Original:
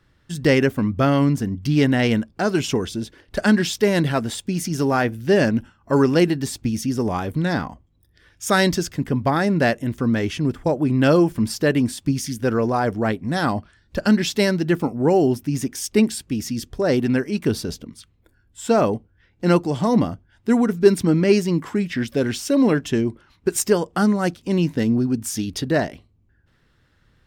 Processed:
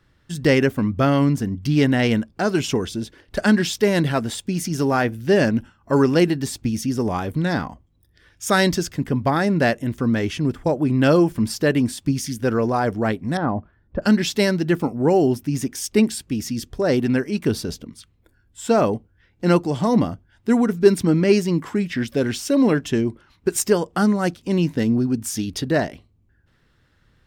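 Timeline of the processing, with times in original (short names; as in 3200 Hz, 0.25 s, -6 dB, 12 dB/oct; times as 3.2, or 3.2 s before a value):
13.37–14.02 LPF 1100 Hz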